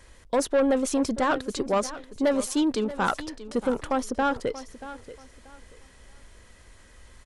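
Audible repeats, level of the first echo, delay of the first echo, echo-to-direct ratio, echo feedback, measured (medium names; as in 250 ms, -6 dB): 2, -15.0 dB, 633 ms, -14.5 dB, 25%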